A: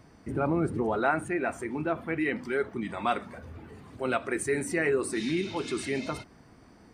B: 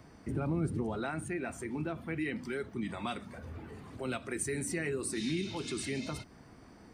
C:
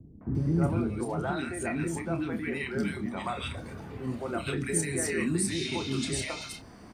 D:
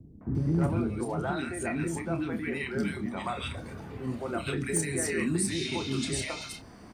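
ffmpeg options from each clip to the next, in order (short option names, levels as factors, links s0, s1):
-filter_complex "[0:a]acrossover=split=240|3000[s0][s1][s2];[s1]acompressor=threshold=0.00708:ratio=2.5[s3];[s0][s3][s2]amix=inputs=3:normalize=0"
-filter_complex "[0:a]asplit=2[s0][s1];[s1]adelay=30,volume=0.376[s2];[s0][s2]amix=inputs=2:normalize=0,acrossover=split=360|1600[s3][s4][s5];[s4]adelay=210[s6];[s5]adelay=350[s7];[s3][s6][s7]amix=inputs=3:normalize=0,volume=2.11"
-af "asoftclip=type=hard:threshold=0.112"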